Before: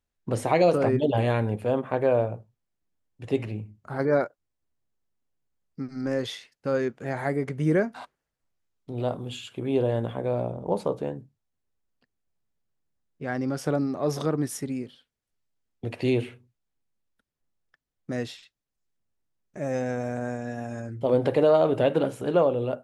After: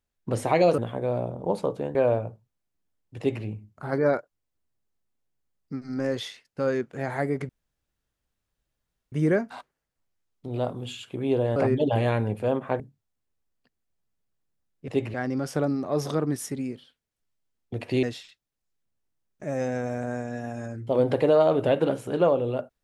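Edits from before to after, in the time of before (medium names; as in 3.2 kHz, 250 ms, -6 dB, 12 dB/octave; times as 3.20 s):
0.78–2.02 s: swap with 10.00–11.17 s
3.25–3.51 s: copy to 13.25 s
7.56 s: insert room tone 1.63 s
16.14–18.17 s: delete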